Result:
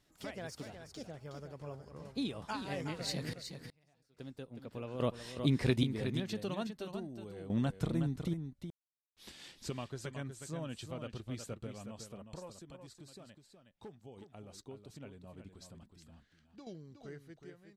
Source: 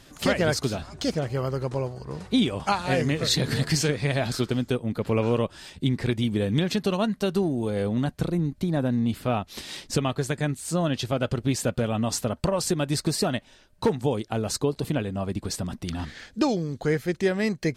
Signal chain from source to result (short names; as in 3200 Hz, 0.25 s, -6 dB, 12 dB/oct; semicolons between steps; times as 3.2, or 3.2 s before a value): ending faded out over 1.35 s; Doppler pass-by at 6.57, 24 m/s, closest 25 m; random-step tremolo 1.2 Hz, depth 100%; on a send: echo 0.367 s -8 dB; on the sum: gain -1.5 dB